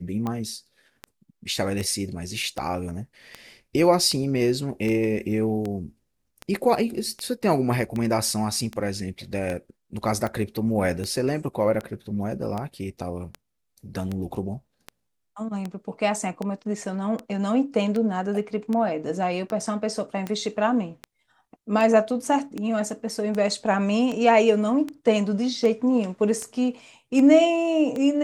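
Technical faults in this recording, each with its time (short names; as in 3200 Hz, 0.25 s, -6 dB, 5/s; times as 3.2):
tick 78 rpm -17 dBFS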